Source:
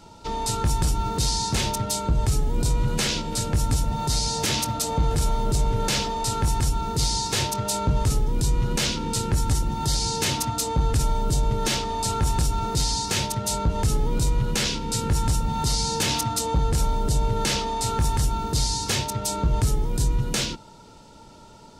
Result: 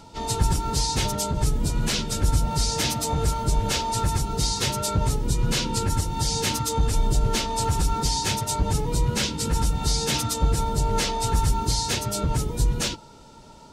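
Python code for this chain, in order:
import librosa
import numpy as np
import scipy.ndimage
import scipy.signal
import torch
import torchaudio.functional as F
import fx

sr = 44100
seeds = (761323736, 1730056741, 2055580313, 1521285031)

y = fx.stretch_vocoder_free(x, sr, factor=0.63)
y = F.gain(torch.from_numpy(y), 3.5).numpy()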